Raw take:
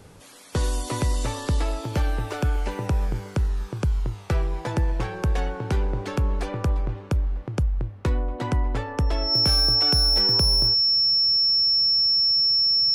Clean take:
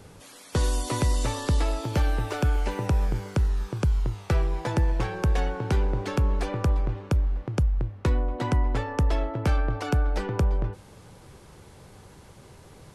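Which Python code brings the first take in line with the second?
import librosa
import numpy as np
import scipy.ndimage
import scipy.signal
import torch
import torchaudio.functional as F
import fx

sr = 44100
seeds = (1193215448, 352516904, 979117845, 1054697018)

y = fx.fix_declip(x, sr, threshold_db=-15.0)
y = fx.notch(y, sr, hz=5400.0, q=30.0)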